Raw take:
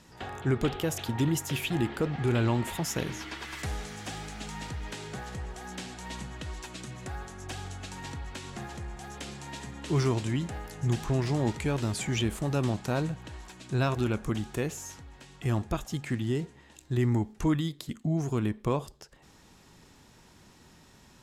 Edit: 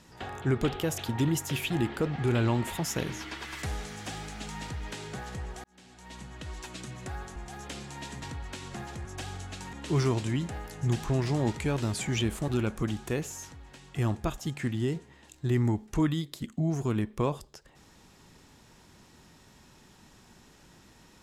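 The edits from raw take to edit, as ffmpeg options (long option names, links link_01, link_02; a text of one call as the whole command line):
ffmpeg -i in.wav -filter_complex "[0:a]asplit=7[link_01][link_02][link_03][link_04][link_05][link_06][link_07];[link_01]atrim=end=5.64,asetpts=PTS-STARTPTS,afade=type=out:start_time=5.636:duration=0.004:curve=hsin[link_08];[link_02]atrim=start=5.64:end=7.362,asetpts=PTS-STARTPTS,afade=type=in:duration=1.04[link_09];[link_03]atrim=start=8.868:end=9.732[link_10];[link_04]atrim=start=8.038:end=8.872[link_11];[link_05]atrim=start=7.358:end=8.042[link_12];[link_06]atrim=start=9.728:end=12.482[link_13];[link_07]atrim=start=13.948[link_14];[link_08][link_09]concat=n=2:v=0:a=1[link_15];[link_15][link_10]acrossfade=duration=0.004:curve1=hsin:curve2=hsin[link_16];[link_16][link_11]acrossfade=duration=0.004:curve1=hsin:curve2=hsin[link_17];[link_17][link_12]acrossfade=duration=0.004:curve1=hsin:curve2=hsin[link_18];[link_18][link_13]acrossfade=duration=0.004:curve1=hsin:curve2=hsin[link_19];[link_19][link_14]acrossfade=duration=0.004:curve1=hsin:curve2=hsin" out.wav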